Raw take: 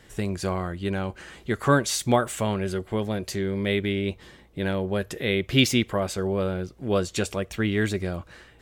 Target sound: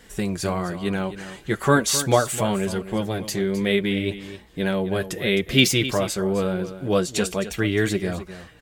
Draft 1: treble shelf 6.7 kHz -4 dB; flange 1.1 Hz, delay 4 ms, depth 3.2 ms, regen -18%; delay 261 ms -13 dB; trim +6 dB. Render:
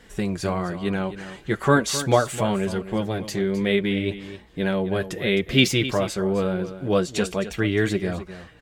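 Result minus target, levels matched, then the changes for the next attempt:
8 kHz band -5.0 dB
change: treble shelf 6.7 kHz +6 dB

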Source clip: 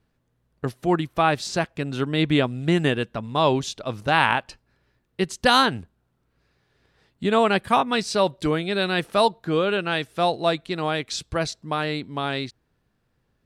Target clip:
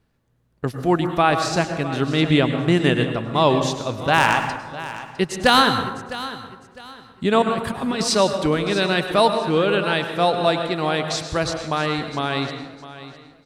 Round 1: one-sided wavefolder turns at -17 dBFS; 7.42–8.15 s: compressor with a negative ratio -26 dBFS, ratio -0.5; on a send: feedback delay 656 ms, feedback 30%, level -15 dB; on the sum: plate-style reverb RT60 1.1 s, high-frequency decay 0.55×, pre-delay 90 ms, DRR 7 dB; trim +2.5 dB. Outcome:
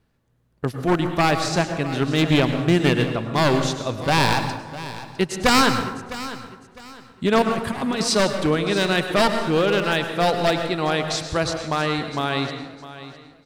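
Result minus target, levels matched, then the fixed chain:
one-sided wavefolder: distortion +21 dB
one-sided wavefolder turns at -6.5 dBFS; 7.42–8.15 s: compressor with a negative ratio -26 dBFS, ratio -0.5; on a send: feedback delay 656 ms, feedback 30%, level -15 dB; on the sum: plate-style reverb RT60 1.1 s, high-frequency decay 0.55×, pre-delay 90 ms, DRR 7 dB; trim +2.5 dB

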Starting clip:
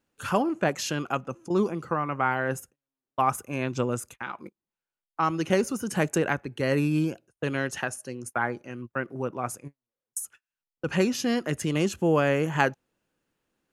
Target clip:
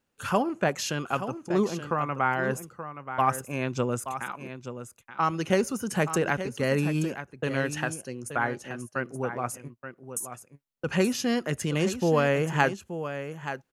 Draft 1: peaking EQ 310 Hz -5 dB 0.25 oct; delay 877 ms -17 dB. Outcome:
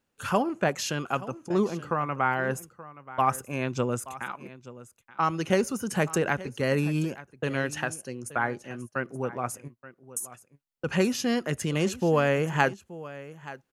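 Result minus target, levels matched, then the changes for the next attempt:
echo-to-direct -6.5 dB
change: delay 877 ms -10.5 dB

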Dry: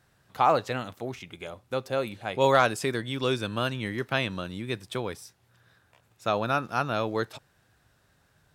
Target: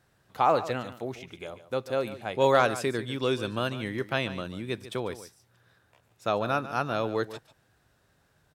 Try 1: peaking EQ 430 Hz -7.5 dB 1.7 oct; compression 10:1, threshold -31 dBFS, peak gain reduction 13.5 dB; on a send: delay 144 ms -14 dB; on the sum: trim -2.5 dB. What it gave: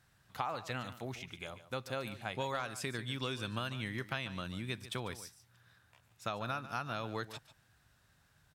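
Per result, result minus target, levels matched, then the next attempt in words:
compression: peak gain reduction +13.5 dB; 500 Hz band -4.0 dB
peaking EQ 430 Hz -7.5 dB 1.7 oct; on a send: delay 144 ms -14 dB; on the sum: trim -2.5 dB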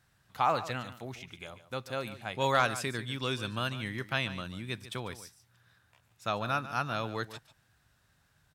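500 Hz band -4.5 dB
peaking EQ 430 Hz +3 dB 1.7 oct; on a send: delay 144 ms -14 dB; on the sum: trim -2.5 dB

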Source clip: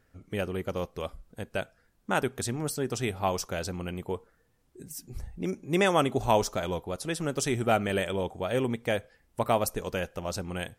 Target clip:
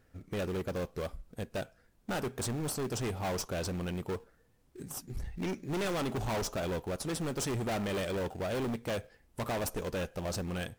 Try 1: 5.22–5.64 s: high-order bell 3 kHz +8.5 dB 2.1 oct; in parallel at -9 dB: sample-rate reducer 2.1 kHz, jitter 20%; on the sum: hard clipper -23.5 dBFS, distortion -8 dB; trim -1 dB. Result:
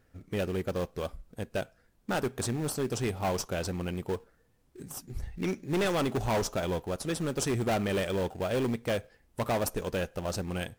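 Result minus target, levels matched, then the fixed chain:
hard clipper: distortion -4 dB
5.22–5.64 s: high-order bell 3 kHz +8.5 dB 2.1 oct; in parallel at -9 dB: sample-rate reducer 2.1 kHz, jitter 20%; on the sum: hard clipper -30 dBFS, distortion -4 dB; trim -1 dB

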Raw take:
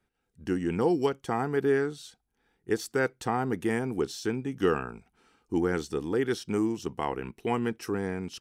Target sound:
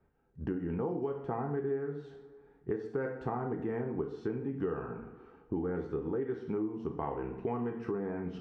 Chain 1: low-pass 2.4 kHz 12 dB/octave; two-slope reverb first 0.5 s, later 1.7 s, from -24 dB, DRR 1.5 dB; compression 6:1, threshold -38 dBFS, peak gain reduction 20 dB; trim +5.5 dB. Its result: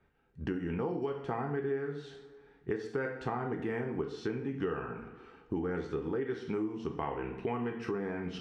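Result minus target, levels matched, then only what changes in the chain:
2 kHz band +6.5 dB
change: low-pass 1.1 kHz 12 dB/octave

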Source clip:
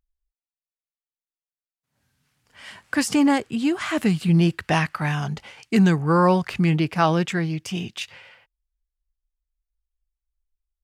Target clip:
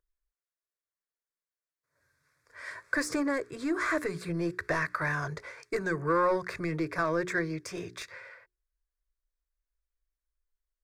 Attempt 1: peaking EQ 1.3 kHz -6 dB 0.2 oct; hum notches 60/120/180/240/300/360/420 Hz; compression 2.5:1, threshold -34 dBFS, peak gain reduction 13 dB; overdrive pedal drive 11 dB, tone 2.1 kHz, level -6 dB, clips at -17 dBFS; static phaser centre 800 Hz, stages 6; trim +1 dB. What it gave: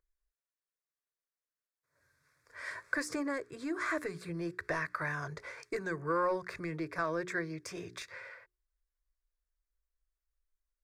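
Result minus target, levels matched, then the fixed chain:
compression: peak gain reduction +7 dB
peaking EQ 1.3 kHz -6 dB 0.2 oct; hum notches 60/120/180/240/300/360/420 Hz; compression 2.5:1, threshold -22 dBFS, peak gain reduction 6 dB; overdrive pedal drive 11 dB, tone 2.1 kHz, level -6 dB, clips at -17 dBFS; static phaser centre 800 Hz, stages 6; trim +1 dB

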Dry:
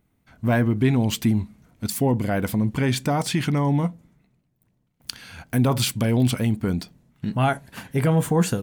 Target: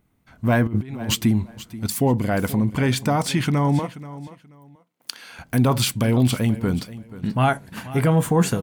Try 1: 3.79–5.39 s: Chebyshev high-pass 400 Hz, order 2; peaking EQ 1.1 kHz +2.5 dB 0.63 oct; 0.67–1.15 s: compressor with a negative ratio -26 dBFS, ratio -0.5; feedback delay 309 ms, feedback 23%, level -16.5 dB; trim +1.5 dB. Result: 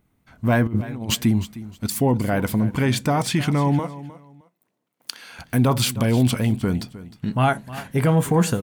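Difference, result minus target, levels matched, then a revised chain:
echo 173 ms early
3.79–5.39 s: Chebyshev high-pass 400 Hz, order 2; peaking EQ 1.1 kHz +2.5 dB 0.63 oct; 0.67–1.15 s: compressor with a negative ratio -26 dBFS, ratio -0.5; feedback delay 482 ms, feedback 23%, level -16.5 dB; trim +1.5 dB

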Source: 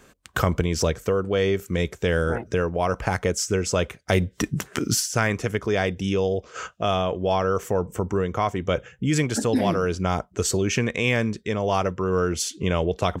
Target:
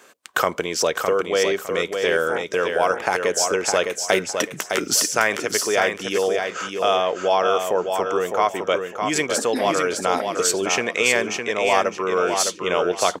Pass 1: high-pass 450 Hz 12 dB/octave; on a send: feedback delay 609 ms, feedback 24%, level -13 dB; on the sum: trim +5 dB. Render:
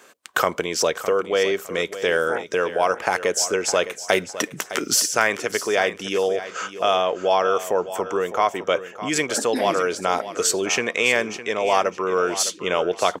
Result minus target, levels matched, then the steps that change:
echo-to-direct -7.5 dB
change: feedback delay 609 ms, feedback 24%, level -5.5 dB

